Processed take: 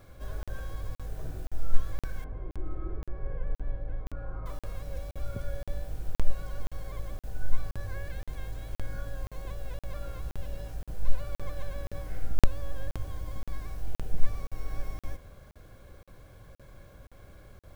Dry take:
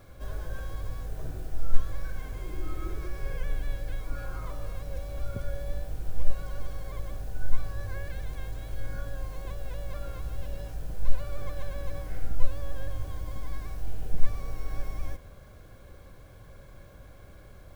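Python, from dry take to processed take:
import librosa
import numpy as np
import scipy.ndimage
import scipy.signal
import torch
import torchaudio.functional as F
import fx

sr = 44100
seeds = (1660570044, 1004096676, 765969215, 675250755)

y = fx.lowpass(x, sr, hz=1100.0, slope=12, at=(2.24, 4.46))
y = fx.buffer_crackle(y, sr, first_s=0.43, period_s=0.52, block=2048, kind='zero')
y = y * librosa.db_to_amplitude(-1.5)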